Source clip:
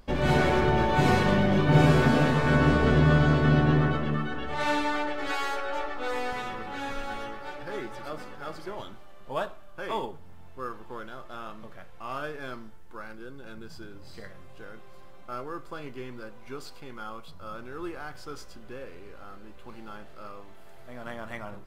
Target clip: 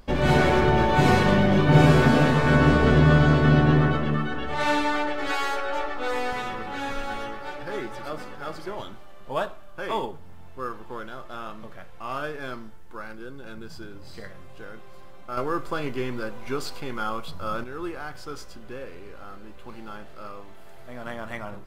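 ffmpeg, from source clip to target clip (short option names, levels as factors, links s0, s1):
-filter_complex "[0:a]asettb=1/sr,asplit=3[s0][s1][s2];[s0]atrim=end=15.374[s3];[s1]atrim=start=15.37:end=17.64,asetpts=PTS-STARTPTS,afade=t=in:d=0.004:c=qsin,afade=t=out:st=2.266:d=0.004:c=qsin,acontrast=67[s4];[s2]atrim=start=17.636[s5];[s3][s4]acrossfade=d=0.004:c1=hsin:c2=qsin[s6];[s6][s5]acrossfade=d=0.004:c1=qsin:c2=hsin,volume=1.5"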